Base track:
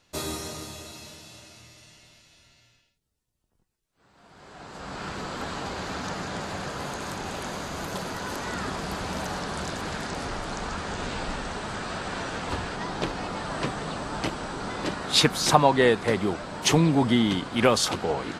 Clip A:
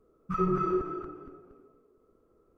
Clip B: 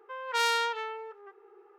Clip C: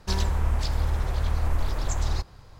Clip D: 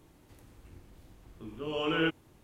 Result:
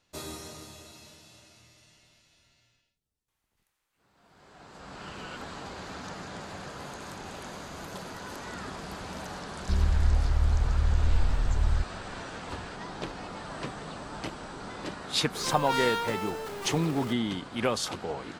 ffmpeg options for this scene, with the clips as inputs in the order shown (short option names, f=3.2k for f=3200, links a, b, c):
-filter_complex "[0:a]volume=-7.5dB[a];[4:a]highpass=1.2k[b];[3:a]bass=f=250:g=13,treble=f=4k:g=-3[c];[2:a]aeval=exprs='val(0)+0.5*0.0316*sgn(val(0))':c=same[d];[b]atrim=end=2.43,asetpts=PTS-STARTPTS,volume=-13.5dB,afade=t=in:d=0.004:c=hsin,afade=t=out:st=2.426:d=0.004:c=hsin,adelay=3280[e];[c]atrim=end=2.59,asetpts=PTS-STARTPTS,volume=-12dB,afade=t=in:d=0.004:c=hsin,afade=t=out:st=2.586:d=0.004:c=hsin,adelay=9610[f];[d]atrim=end=1.78,asetpts=PTS-STARTPTS,volume=-4.5dB,afade=t=in:d=0.004:c=hsin,afade=t=out:st=1.776:d=0.004:c=hsin,adelay=15350[g];[a][e][f][g]amix=inputs=4:normalize=0"